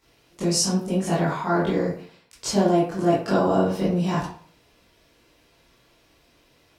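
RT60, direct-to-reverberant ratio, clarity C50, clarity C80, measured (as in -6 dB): 0.50 s, -10.0 dB, 3.0 dB, 8.0 dB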